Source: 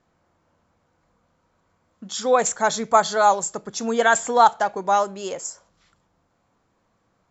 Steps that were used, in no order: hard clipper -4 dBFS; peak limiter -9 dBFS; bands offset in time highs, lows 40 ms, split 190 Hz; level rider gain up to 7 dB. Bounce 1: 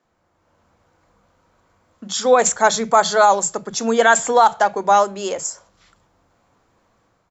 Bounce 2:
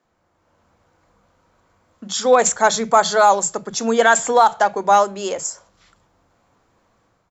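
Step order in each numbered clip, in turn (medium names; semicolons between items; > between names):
bands offset in time > hard clipper > peak limiter > level rider; peak limiter > level rider > hard clipper > bands offset in time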